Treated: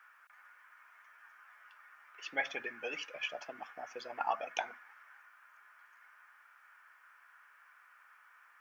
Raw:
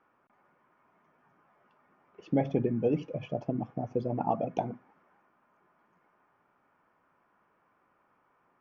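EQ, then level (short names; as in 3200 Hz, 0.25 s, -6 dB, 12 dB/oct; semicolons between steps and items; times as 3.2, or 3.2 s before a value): resonant high-pass 1600 Hz, resonance Q 3; high shelf 4100 Hz +10.5 dB; +5.5 dB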